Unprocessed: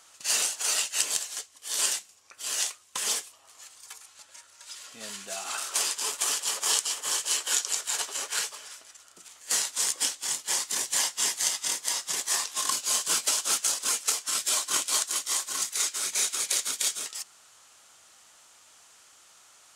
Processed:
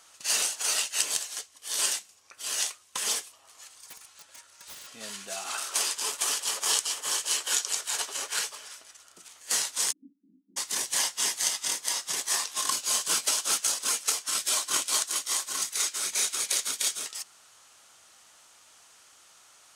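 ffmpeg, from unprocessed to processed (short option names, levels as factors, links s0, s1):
-filter_complex "[0:a]asettb=1/sr,asplit=3[s0][s1][s2];[s0]atrim=end=3.864[s3];[s1]atrim=start=3.86:end=4.91,asetpts=PTS-STARTPTS,afade=t=in:d=0.004:c=qsin,afade=t=out:st=1.046:d=0.004:c=qsin,aeval=exprs='(mod(70.8*val(0)+1,2)-1)/70.8':c=same[s4];[s2]atrim=start=4.906[s5];[s3][s4]acrossfade=d=0.004:c1=hsin:c2=qsin[s6];[s6][s5]acrossfade=d=0.004:c1=qsin:c2=hsin,asplit=3[s7][s8][s9];[s7]afade=t=out:st=9.91:d=0.02[s10];[s8]asuperpass=centerf=240:order=8:qfactor=2.1,afade=t=in:st=9.91:d=0.02,afade=t=out:st=10.56:d=0.02[s11];[s9]afade=t=in:st=10.56:d=0.02[s12];[s10][s11][s12]amix=inputs=3:normalize=0,bandreject=f=7300:w=18"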